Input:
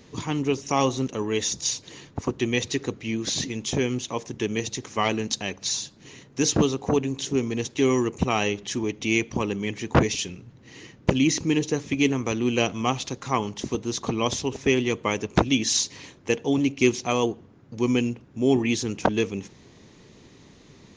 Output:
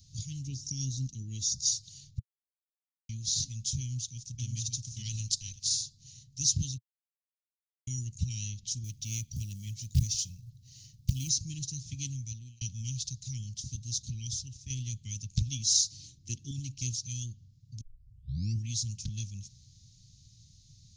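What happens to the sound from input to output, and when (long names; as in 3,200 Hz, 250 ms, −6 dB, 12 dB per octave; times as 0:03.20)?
0:00.47–0:01.67: drawn EQ curve 110 Hz 0 dB, 310 Hz +9 dB, 740 Hz +2 dB, 1,100 Hz −11 dB, 2,000 Hz −7 dB, 3,300 Hz −4 dB, 5,300 Hz 0 dB, 11,000 Hz −7 dB
0:02.19–0:03.09: silence
0:03.81–0:04.45: delay throw 570 ms, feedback 15%, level −3 dB
0:05.05–0:05.81: ceiling on every frequency bin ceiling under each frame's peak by 13 dB
0:06.78–0:07.87: silence
0:08.84–0:11.29: floating-point word with a short mantissa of 4 bits
0:12.08–0:12.61: fade out
0:13.98–0:14.70: fade out, to −7.5 dB
0:15.91–0:16.51: parametric band 330 Hz +14.5 dB 0.9 octaves
0:17.81: tape start 0.85 s
whole clip: Chebyshev band-stop filter 120–4,600 Hz, order 3; dynamic equaliser 1,500 Hz, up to −7 dB, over −57 dBFS, Q 1.2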